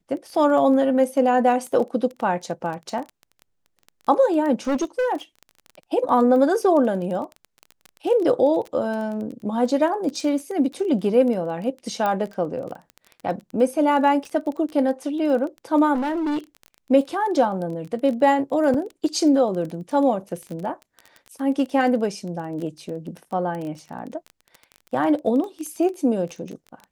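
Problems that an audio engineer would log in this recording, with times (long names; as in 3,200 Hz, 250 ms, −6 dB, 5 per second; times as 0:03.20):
surface crackle 18 per second −29 dBFS
0:04.67–0:05.13: clipping −18.5 dBFS
0:12.06: click −12 dBFS
0:15.94–0:16.39: clipping −21.5 dBFS
0:18.74: drop-out 3.9 ms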